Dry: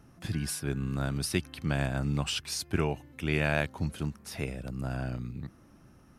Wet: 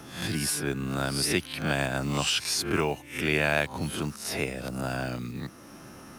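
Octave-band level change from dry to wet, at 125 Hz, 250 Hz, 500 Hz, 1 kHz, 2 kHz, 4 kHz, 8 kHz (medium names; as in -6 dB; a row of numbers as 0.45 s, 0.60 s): -1.5 dB, +2.5 dB, +5.0 dB, +6.0 dB, +6.0 dB, +7.5 dB, +7.0 dB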